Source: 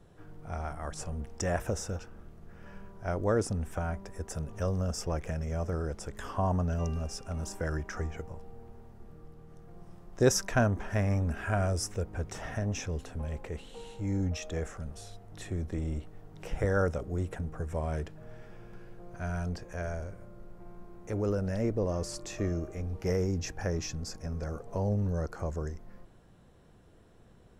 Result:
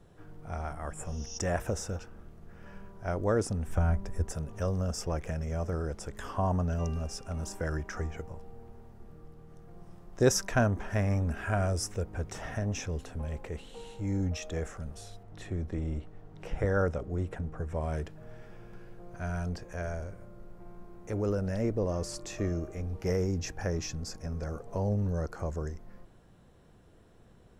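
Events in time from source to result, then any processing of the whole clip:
0.85–1.35 spectral repair 2600–6800 Hz
3.68–4.31 low shelf 150 Hz +12 dB
15.23–17.81 high shelf 6500 Hz -11 dB

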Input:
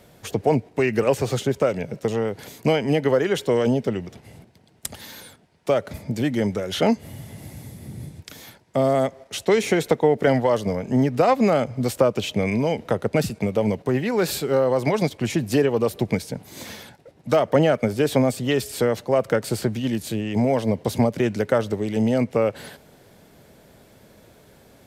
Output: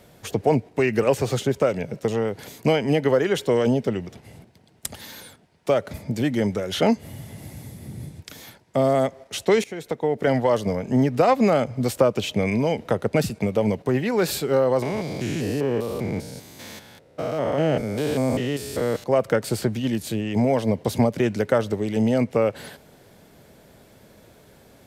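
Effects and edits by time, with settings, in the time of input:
9.64–10.5 fade in linear, from -20 dB
14.82–19.04 stepped spectrum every 0.2 s

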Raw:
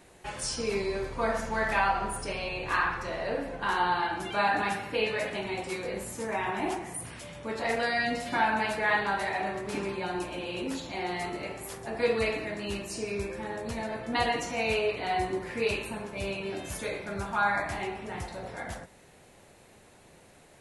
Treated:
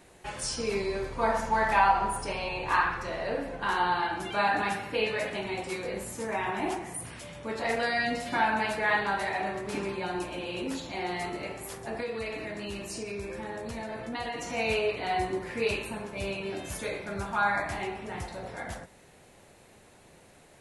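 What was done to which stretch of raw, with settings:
1.22–2.82 bell 900 Hz +9 dB 0.37 oct
12–14.5 compressor 3:1, threshold -33 dBFS

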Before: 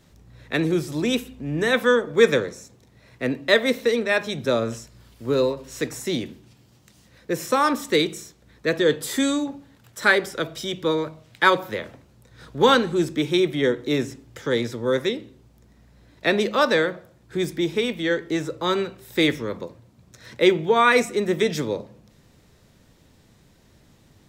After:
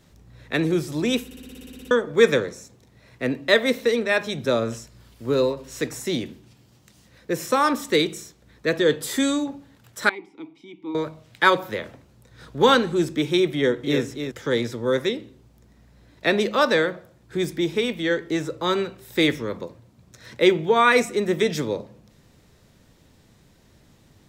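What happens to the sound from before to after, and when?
1.25 stutter in place 0.06 s, 11 plays
10.09–10.95 vowel filter u
13.54–14.02 echo throw 0.29 s, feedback 10%, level -7.5 dB

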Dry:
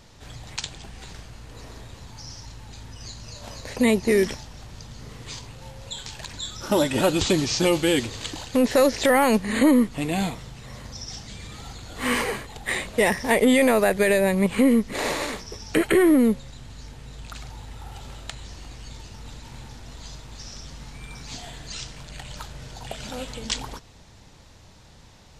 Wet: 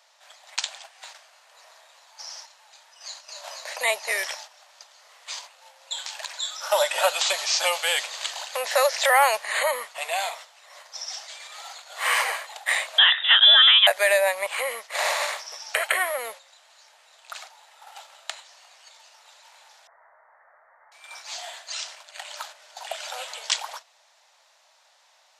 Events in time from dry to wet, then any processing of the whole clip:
12.98–13.87 inverted band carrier 3700 Hz
19.87–20.92 steep low-pass 2000 Hz 96 dB/oct
whole clip: elliptic high-pass 610 Hz, stop band 50 dB; gate -45 dBFS, range -8 dB; gain +4 dB

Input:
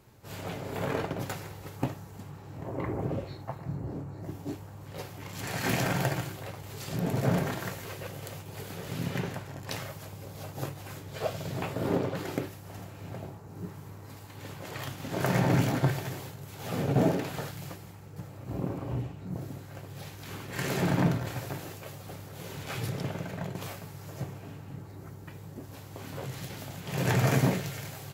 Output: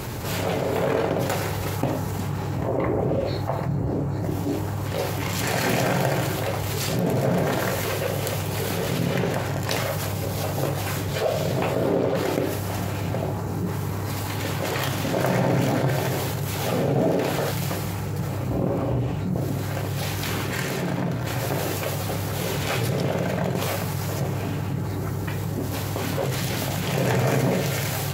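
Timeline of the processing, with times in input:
20.35–21.53 dip -13 dB, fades 0.32 s
whole clip: de-hum 51.61 Hz, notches 37; dynamic EQ 530 Hz, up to +6 dB, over -46 dBFS, Q 1.4; fast leveller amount 70%

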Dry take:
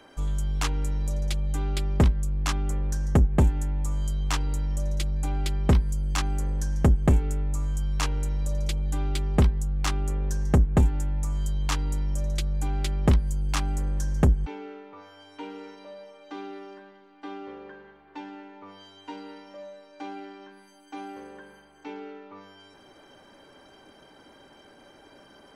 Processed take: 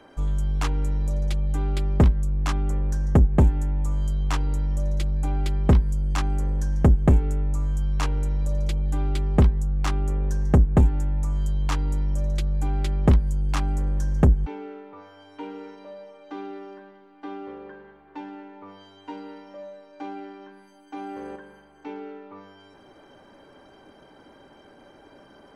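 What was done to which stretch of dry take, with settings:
20.96–21.36 fast leveller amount 70%
whole clip: high shelf 2200 Hz -9 dB; gain +3 dB

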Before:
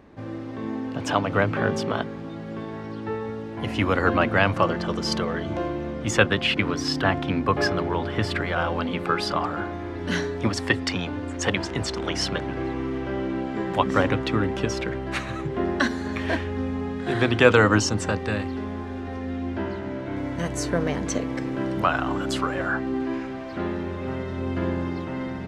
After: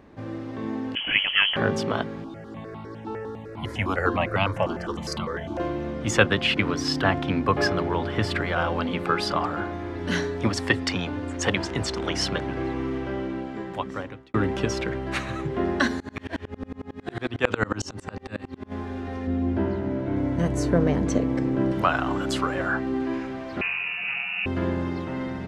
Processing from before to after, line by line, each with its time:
0.95–1.56 inverted band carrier 3200 Hz
2.24–5.6 step phaser 9.9 Hz 520–1700 Hz
12.91–14.34 fade out
16–18.72 dB-ramp tremolo swelling 11 Hz, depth 31 dB
19.27–21.72 tilt shelf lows +5.5 dB, about 860 Hz
23.61–24.46 inverted band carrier 2800 Hz

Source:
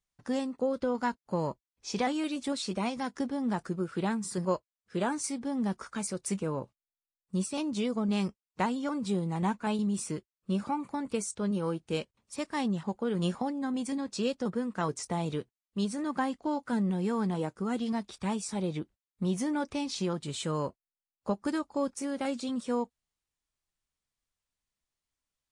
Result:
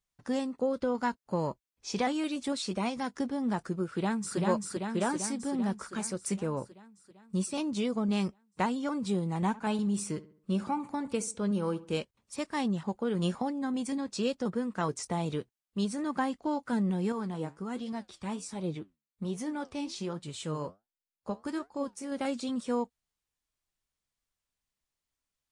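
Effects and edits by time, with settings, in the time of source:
3.87–4.38 echo throw 0.39 s, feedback 65%, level -1.5 dB
9.47–11.98 darkening echo 69 ms, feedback 43%, low-pass 2600 Hz, level -17 dB
17.12–22.12 flange 1.3 Hz, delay 5.3 ms, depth 9.2 ms, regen +71%

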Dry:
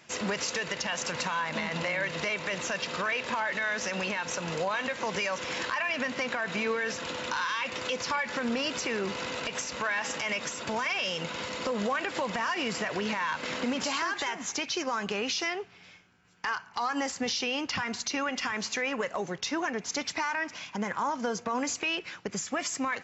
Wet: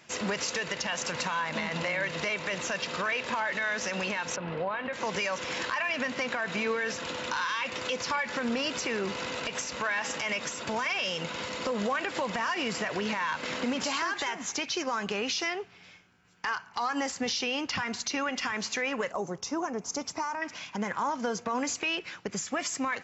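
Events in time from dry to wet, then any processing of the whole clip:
4.36–4.93 air absorption 430 m
19.12–20.42 band shelf 2600 Hz -11.5 dB

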